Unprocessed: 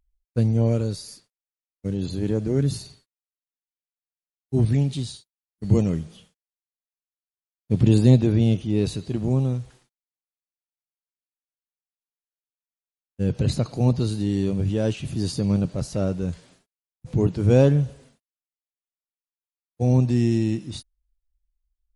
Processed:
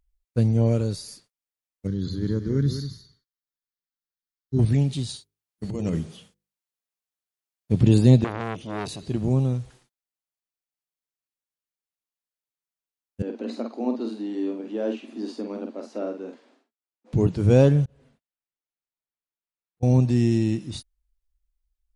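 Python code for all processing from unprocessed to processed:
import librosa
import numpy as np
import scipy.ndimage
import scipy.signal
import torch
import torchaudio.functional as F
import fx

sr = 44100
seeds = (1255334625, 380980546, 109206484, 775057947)

y = fx.chain(x, sr, fx.fixed_phaser(hz=2600.0, stages=6),
    fx.echo_single(ms=193, db=-10.0), at=(1.87, 4.59))
y = fx.chain(y, sr, fx.low_shelf(hz=82.0, db=-8.0),
    fx.hum_notches(base_hz=50, count=10),
    fx.over_compress(threshold_db=-26.0, ratio=-1.0), at=(5.09, 7.72))
y = fx.chain(y, sr, fx.highpass(hz=260.0, slope=6),
    fx.transformer_sat(knee_hz=1300.0), at=(8.24, 9.03))
y = fx.chain(y, sr, fx.cheby_ripple_highpass(hz=220.0, ripple_db=3),
    fx.spacing_loss(db_at_10k=21),
    fx.doubler(ms=48.0, db=-5.5), at=(13.22, 17.13))
y = fx.chain(y, sr, fx.bass_treble(bass_db=2, treble_db=-12),
    fx.auto_swell(attack_ms=362.0), at=(17.85, 19.83))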